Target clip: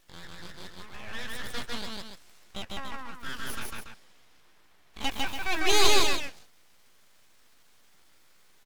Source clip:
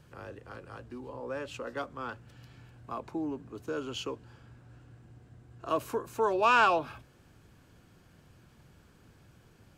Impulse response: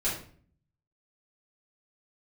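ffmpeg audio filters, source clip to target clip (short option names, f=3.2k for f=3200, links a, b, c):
-af "highpass=450,asetrate=66075,aresample=44100,atempo=0.66742,aeval=exprs='abs(val(0))':c=same,asetrate=49833,aresample=44100,aecho=1:1:151.6|285.7:0.891|0.398,volume=3.5dB"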